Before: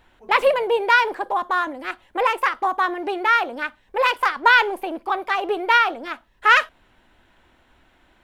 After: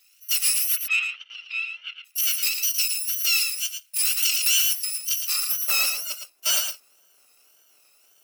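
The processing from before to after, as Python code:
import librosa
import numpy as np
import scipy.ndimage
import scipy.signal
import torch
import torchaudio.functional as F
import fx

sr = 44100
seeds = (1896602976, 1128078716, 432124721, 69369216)

p1 = fx.bit_reversed(x, sr, seeds[0], block=128)
p2 = fx.wow_flutter(p1, sr, seeds[1], rate_hz=2.1, depth_cents=120.0)
p3 = fx.cheby1_bandpass(p2, sr, low_hz=180.0, high_hz=3300.0, order=4, at=(0.75, 2.04), fade=0.02)
p4 = 10.0 ** (-18.5 / 20.0) * np.tanh(p3 / 10.0 ** (-18.5 / 20.0))
p5 = fx.filter_sweep_highpass(p4, sr, from_hz=2300.0, to_hz=540.0, start_s=5.15, end_s=5.67, q=1.3)
p6 = p5 + fx.echo_single(p5, sr, ms=112, db=-7.0, dry=0)
y = fx.env_flatten(p6, sr, amount_pct=50, at=(4.17, 4.73))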